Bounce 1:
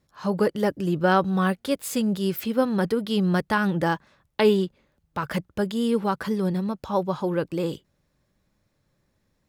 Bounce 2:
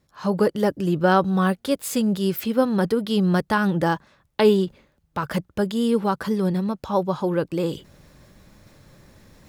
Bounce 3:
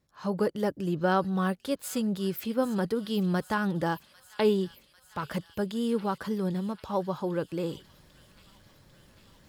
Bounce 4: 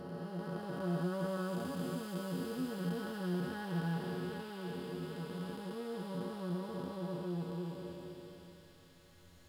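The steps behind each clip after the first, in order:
dynamic EQ 2200 Hz, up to -4 dB, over -40 dBFS, Q 1.6; reverse; upward compressor, threshold -37 dBFS; reverse; gain +2.5 dB
thin delay 0.797 s, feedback 70%, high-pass 2500 Hz, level -13.5 dB; gain -7.5 dB
time blur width 1.36 s; metallic resonator 84 Hz, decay 0.22 s, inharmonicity 0.008; gain +3.5 dB

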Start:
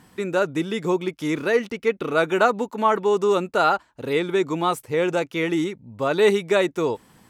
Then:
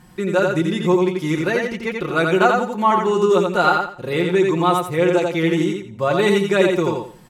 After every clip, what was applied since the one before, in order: low shelf 100 Hz +12 dB; comb 5.6 ms; feedback echo 86 ms, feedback 26%, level -3.5 dB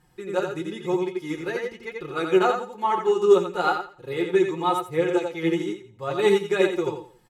flange 1 Hz, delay 6 ms, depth 6.3 ms, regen +48%; comb 2.4 ms, depth 50%; upward expander 1.5:1, over -29 dBFS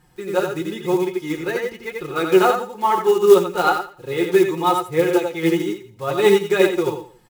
block floating point 5-bit; gain +5 dB

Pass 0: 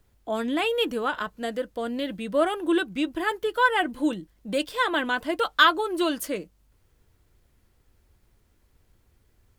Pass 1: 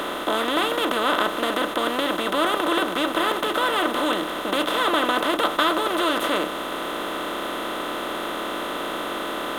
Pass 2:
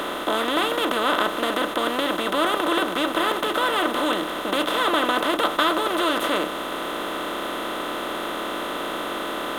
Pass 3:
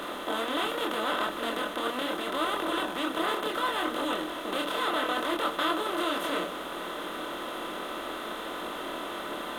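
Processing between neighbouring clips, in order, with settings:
per-bin compression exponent 0.2; notch 1600 Hz, Q 8.4; gain -7 dB
nothing audible
chorus voices 2, 0.75 Hz, delay 25 ms, depth 3.3 ms; gain -4.5 dB

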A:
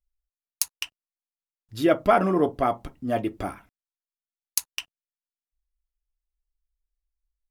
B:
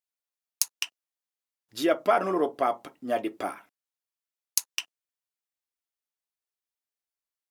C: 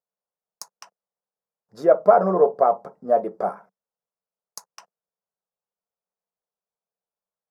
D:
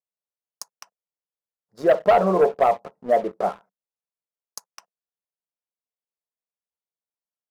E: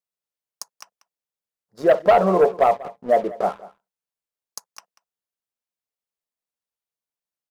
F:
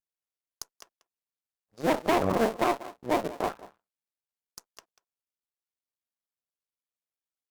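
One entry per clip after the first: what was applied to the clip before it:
HPF 360 Hz 12 dB/oct; dynamic EQ 6200 Hz, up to +4 dB, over -48 dBFS, Q 1.7; compressor 1.5:1, threshold -27 dBFS, peak gain reduction 5 dB; gain +1.5 dB
EQ curve 110 Hz 0 dB, 190 Hz +14 dB, 290 Hz -9 dB, 450 Hz +13 dB, 670 Hz +10 dB, 1000 Hz +6 dB, 1500 Hz 0 dB, 3000 Hz -25 dB, 5000 Hz -8 dB, 12000 Hz -17 dB; gain -1 dB
sample leveller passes 2; gain -6 dB
echo 0.19 s -19.5 dB; gain +1.5 dB
cycle switcher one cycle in 2, muted; tube stage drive 14 dB, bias 0.4; vibrato 0.39 Hz 16 cents; gain -2.5 dB

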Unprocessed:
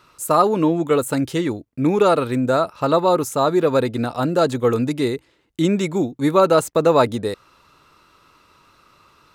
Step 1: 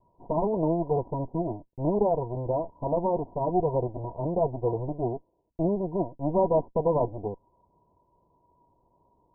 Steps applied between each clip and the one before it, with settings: minimum comb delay 2 ms; rippled Chebyshev low-pass 1000 Hz, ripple 9 dB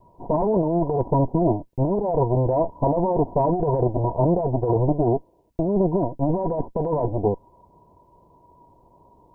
negative-ratio compressor -29 dBFS, ratio -1; gain +9 dB

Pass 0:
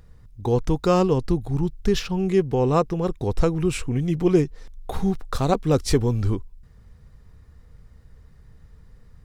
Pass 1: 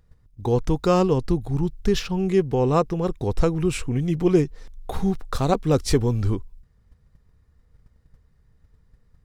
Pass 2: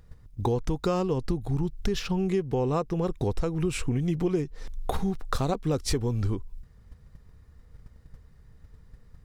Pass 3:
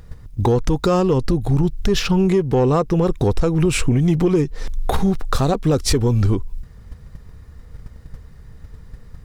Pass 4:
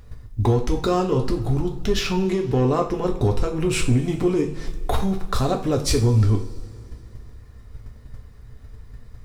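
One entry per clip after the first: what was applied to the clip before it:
gate -43 dBFS, range -10 dB
compressor 6:1, threshold -30 dBFS, peak gain reduction 16.5 dB; gain +6 dB
in parallel at +2.5 dB: limiter -20 dBFS, peak gain reduction 7 dB; on the sum: soft clip -12 dBFS, distortion -21 dB; gain +5 dB
two-slope reverb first 0.37 s, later 2.8 s, from -21 dB, DRR 1.5 dB; gain -5 dB

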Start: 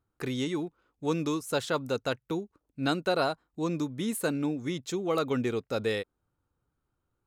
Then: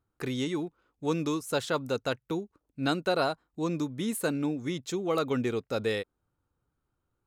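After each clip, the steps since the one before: nothing audible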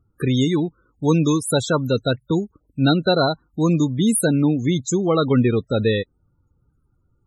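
tone controls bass +9 dB, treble +11 dB; loudest bins only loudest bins 32; gain +8.5 dB

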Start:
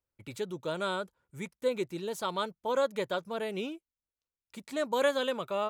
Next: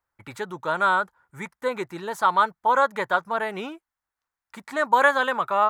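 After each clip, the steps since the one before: band shelf 1200 Hz +13.5 dB; gain +2 dB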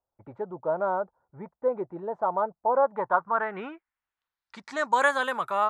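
low-pass sweep 650 Hz -> 11000 Hz, 2.74–5.3; gain -4.5 dB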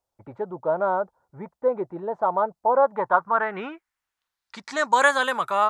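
bell 6000 Hz +5.5 dB 2 oct; gain +3.5 dB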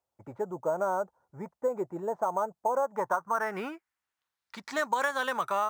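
in parallel at -12 dB: sample-rate reducer 7300 Hz, jitter 0%; on the sum: compressor 6:1, threshold -20 dBFS, peak gain reduction 9.5 dB; HPF 68 Hz; gain -4.5 dB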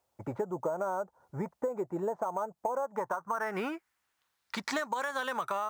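in parallel at +2 dB: limiter -21 dBFS, peak gain reduction 7.5 dB; on the sum: compressor 6:1, threshold -32 dBFS, peak gain reduction 13.5 dB; gain +1.5 dB

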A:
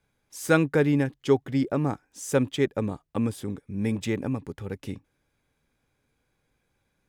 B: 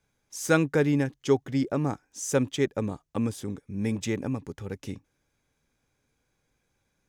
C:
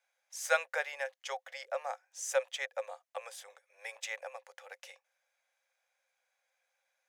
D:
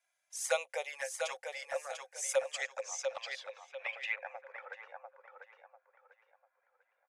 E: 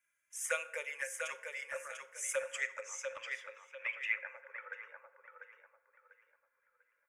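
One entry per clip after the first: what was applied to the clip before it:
bell 6200 Hz +7.5 dB 0.54 oct; gain -1.5 dB
rippled Chebyshev high-pass 510 Hz, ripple 6 dB
envelope flanger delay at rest 3 ms, full sweep at -30.5 dBFS; feedback echo 0.695 s, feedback 31%, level -5.5 dB; low-pass sweep 10000 Hz -> 1300 Hz, 2.35–4.82; gain +1 dB
fixed phaser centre 1800 Hz, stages 4; FDN reverb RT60 0.92 s, low-frequency decay 0.95×, high-frequency decay 0.55×, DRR 10.5 dB; gain +2 dB

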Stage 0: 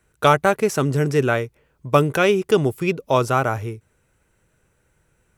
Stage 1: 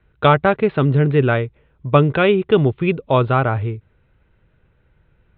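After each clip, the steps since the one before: steep low-pass 3900 Hz 96 dB/oct; low shelf 160 Hz +9 dB; gain +1 dB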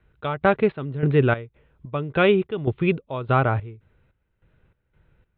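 step gate "xx..xxx...x" 146 bpm -12 dB; gain -2.5 dB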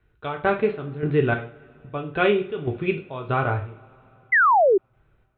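two-slope reverb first 0.37 s, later 3.6 s, from -28 dB, DRR 2 dB; painted sound fall, 4.32–4.78, 360–2100 Hz -12 dBFS; gain -4 dB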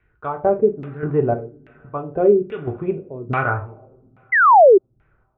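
LFO low-pass saw down 1.2 Hz 240–2400 Hz

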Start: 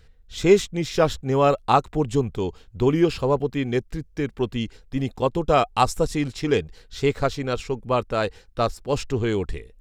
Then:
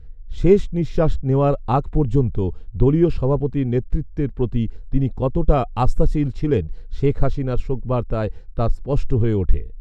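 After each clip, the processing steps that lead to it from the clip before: tilt -4 dB/oct; gain -4 dB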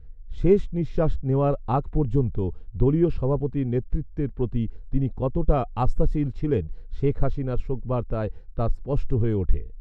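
high shelf 3600 Hz -9.5 dB; gain -4.5 dB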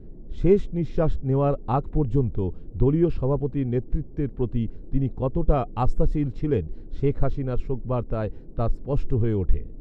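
band noise 36–380 Hz -48 dBFS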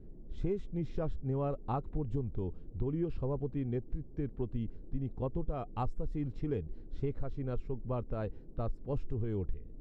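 compressor 6:1, threshold -21 dBFS, peak gain reduction 10 dB; gain -8.5 dB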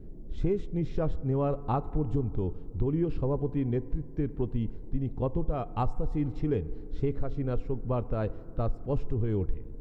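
FDN reverb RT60 2.3 s, low-frequency decay 0.75×, high-frequency decay 0.25×, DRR 16.5 dB; gain +6 dB

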